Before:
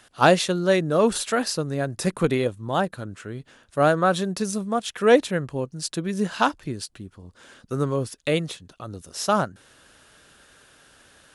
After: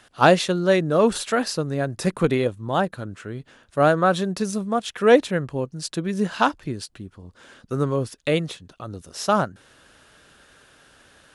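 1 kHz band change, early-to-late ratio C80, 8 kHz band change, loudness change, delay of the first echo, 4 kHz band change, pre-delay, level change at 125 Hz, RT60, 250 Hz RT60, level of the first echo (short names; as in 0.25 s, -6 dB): +1.5 dB, none, -2.0 dB, +1.5 dB, none, 0.0 dB, none, +1.5 dB, none, none, none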